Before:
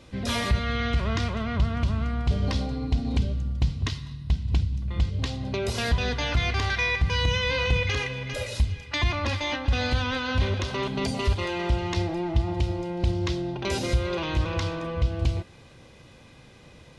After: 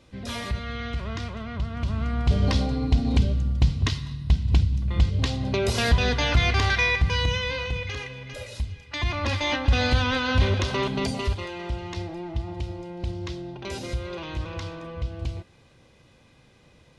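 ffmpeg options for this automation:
ffmpeg -i in.wav -af "volume=13.5dB,afade=type=in:start_time=1.7:duration=0.71:silence=0.334965,afade=type=out:start_time=6.71:duration=0.99:silence=0.316228,afade=type=in:start_time=8.87:duration=0.64:silence=0.334965,afade=type=out:start_time=10.75:duration=0.75:silence=0.334965" out.wav

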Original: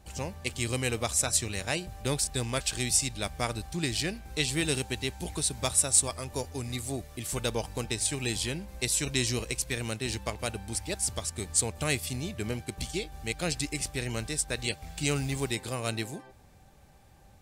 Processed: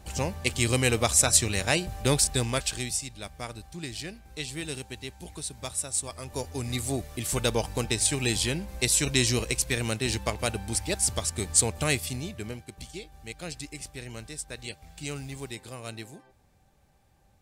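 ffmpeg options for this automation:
ffmpeg -i in.wav -af "volume=17dB,afade=type=out:start_time=2.23:duration=0.77:silence=0.237137,afade=type=in:start_time=6.01:duration=0.8:silence=0.281838,afade=type=out:start_time=11.67:duration=0.98:silence=0.266073" out.wav

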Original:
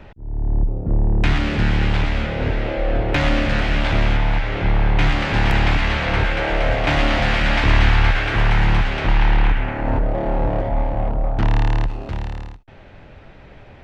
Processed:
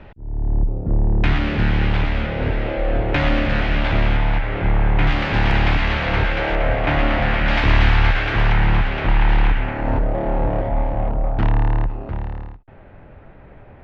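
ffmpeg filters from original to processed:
ffmpeg -i in.wav -af "asetnsamples=nb_out_samples=441:pad=0,asendcmd='4.38 lowpass f 2600;5.07 lowpass f 4500;6.55 lowpass f 2500;7.48 lowpass f 4700;8.52 lowpass f 3200;9.29 lowpass f 5300;10.04 lowpass f 3300;11.51 lowpass f 1700',lowpass=3700" out.wav

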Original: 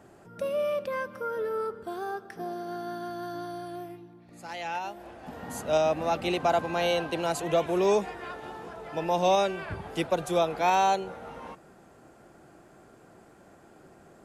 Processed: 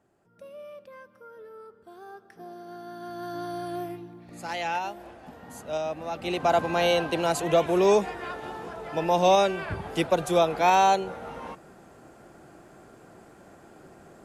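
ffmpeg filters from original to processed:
ffmpeg -i in.wav -af "volume=15.5dB,afade=type=in:start_time=1.69:duration=1.25:silence=0.316228,afade=type=in:start_time=2.94:duration=0.89:silence=0.281838,afade=type=out:start_time=4.51:duration=0.88:silence=0.251189,afade=type=in:start_time=6.13:duration=0.48:silence=0.334965" out.wav

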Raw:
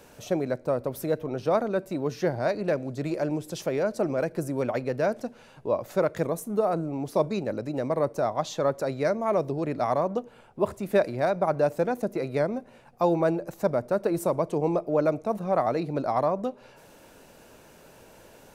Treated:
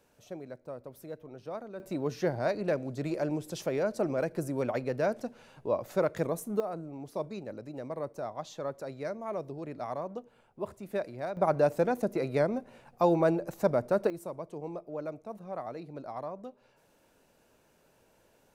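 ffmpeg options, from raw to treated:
ffmpeg -i in.wav -af "asetnsamples=nb_out_samples=441:pad=0,asendcmd='1.8 volume volume -3.5dB;6.6 volume volume -11dB;11.37 volume volume -1.5dB;14.1 volume volume -14dB',volume=-15.5dB" out.wav

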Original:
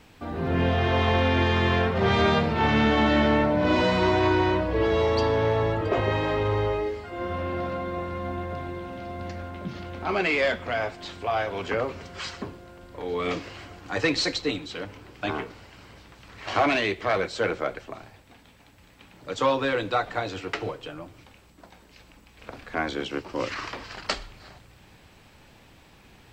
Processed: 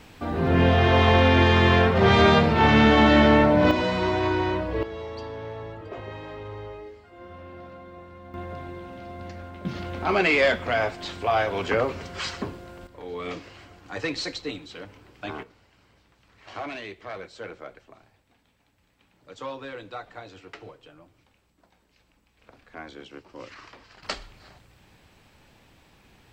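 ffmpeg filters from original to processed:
ffmpeg -i in.wav -af "asetnsamples=nb_out_samples=441:pad=0,asendcmd='3.71 volume volume -2.5dB;4.83 volume volume -13dB;8.34 volume volume -3.5dB;9.65 volume volume 3.5dB;12.87 volume volume -5.5dB;15.43 volume volume -12.5dB;24.03 volume volume -3.5dB',volume=4.5dB" out.wav

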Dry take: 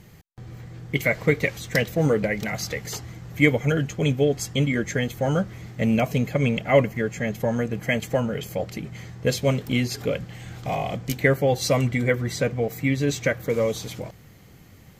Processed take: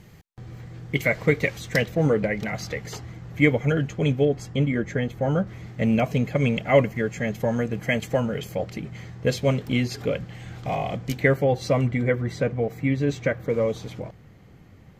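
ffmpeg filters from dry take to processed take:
ffmpeg -i in.wav -af "asetnsamples=nb_out_samples=441:pad=0,asendcmd='1.85 lowpass f 3000;4.25 lowpass f 1500;5.47 lowpass f 3900;6.35 lowpass f 7300;8.51 lowpass f 4200;11.44 lowpass f 1700',lowpass=frequency=7300:poles=1" out.wav

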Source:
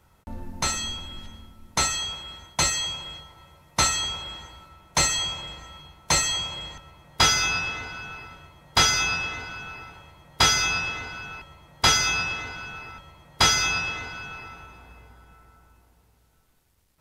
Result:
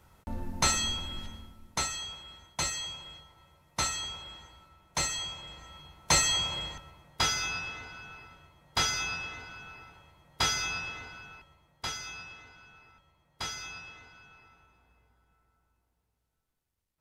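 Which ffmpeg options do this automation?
ffmpeg -i in.wav -af "volume=9dB,afade=type=out:start_time=1.22:duration=0.63:silence=0.354813,afade=type=in:start_time=5.41:duration=1.17:silence=0.354813,afade=type=out:start_time=6.58:duration=0.65:silence=0.354813,afade=type=out:start_time=11.03:duration=0.89:silence=0.354813" out.wav

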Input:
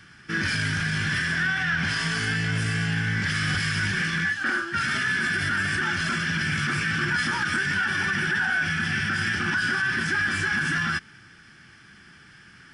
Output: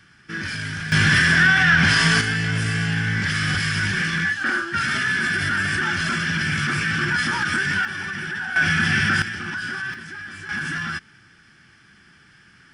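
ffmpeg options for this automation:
ffmpeg -i in.wav -af "asetnsamples=nb_out_samples=441:pad=0,asendcmd='0.92 volume volume 9.5dB;2.21 volume volume 3dB;7.85 volume volume -4dB;8.56 volume volume 6.5dB;9.22 volume volume -4dB;9.94 volume volume -11dB;10.49 volume volume -2dB',volume=-3dB" out.wav

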